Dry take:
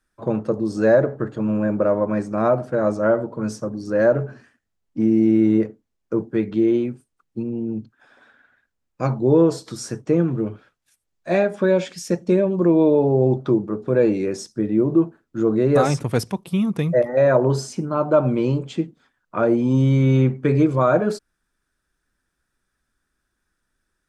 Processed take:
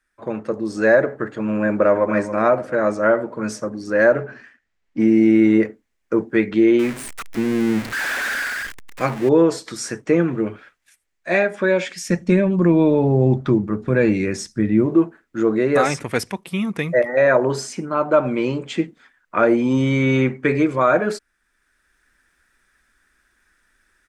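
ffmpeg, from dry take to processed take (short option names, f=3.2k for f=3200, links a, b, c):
-filter_complex "[0:a]asplit=2[a][b];[b]afade=t=in:st=1.67:d=0.01,afade=t=out:st=2.07:d=0.01,aecho=0:1:280|560|840|1120|1400|1680:0.298538|0.164196|0.0903078|0.0496693|0.0273181|0.015025[c];[a][c]amix=inputs=2:normalize=0,asettb=1/sr,asplit=3[d][e][f];[d]atrim=end=4.204[g];[e]atrim=start=4.2:end=4.99,asetpts=PTS-STARTPTS,afade=t=in:d=0.004:c=qsin,afade=t=out:st=0.786:d=0.004:c=qsin,lowpass=5.8k[h];[f]atrim=start=4.986[i];[g][h]acrossfade=d=0.004:c1=hsin:c2=qsin[j];[j][i]acrossfade=d=0.004:c1=qsin:c2=hsin,asettb=1/sr,asplit=3[k][l][m];[k]atrim=end=6.794[n];[l]atrim=start=6.79:end=9.29,asetpts=PTS-STARTPTS,afade=t=in:d=0.004:c=qsin,afade=t=out:st=2.496:d=0.004:c=qsin,aeval=exprs='val(0)+0.5*0.0237*sgn(val(0))':c=same[o];[m]atrim=start=9.286[p];[n][o]acrossfade=d=0.004:c1=hsin:c2=qsin[q];[q][p]acrossfade=d=0.004:c1=qsin:c2=hsin,asplit=3[r][s][t];[r]afade=t=out:st=12.04:d=0.02[u];[s]asubboost=boost=5:cutoff=180,afade=t=in:st=12.04:d=0.02,afade=t=out:st=14.85:d=0.02[v];[t]afade=t=in:st=14.85:d=0.02[w];[u][v][w]amix=inputs=3:normalize=0,equalizer=f=125:t=o:w=1:g=-8,equalizer=f=2k:t=o:w=1:g=11,equalizer=f=8k:t=o:w=1:g=3,dynaudnorm=f=350:g=3:m=11.5dB,volume=-3.5dB"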